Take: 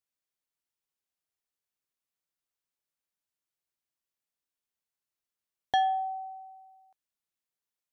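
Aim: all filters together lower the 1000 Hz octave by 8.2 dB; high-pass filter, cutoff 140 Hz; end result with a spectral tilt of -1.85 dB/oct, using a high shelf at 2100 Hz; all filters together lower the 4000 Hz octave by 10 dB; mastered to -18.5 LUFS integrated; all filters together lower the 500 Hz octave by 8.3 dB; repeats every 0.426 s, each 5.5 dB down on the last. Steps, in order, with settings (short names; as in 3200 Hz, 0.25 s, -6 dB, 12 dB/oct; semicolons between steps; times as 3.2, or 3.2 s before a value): HPF 140 Hz; bell 500 Hz -8 dB; bell 1000 Hz -7 dB; high shelf 2100 Hz -4 dB; bell 4000 Hz -9 dB; feedback echo 0.426 s, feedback 53%, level -5.5 dB; gain +22.5 dB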